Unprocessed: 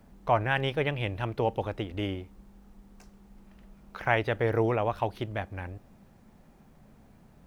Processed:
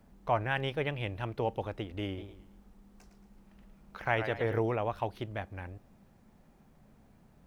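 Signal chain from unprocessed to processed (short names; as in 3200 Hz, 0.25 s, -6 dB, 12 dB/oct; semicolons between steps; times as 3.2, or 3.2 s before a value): 2.06–4.59 warbling echo 0.111 s, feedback 37%, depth 138 cents, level -9 dB; gain -4.5 dB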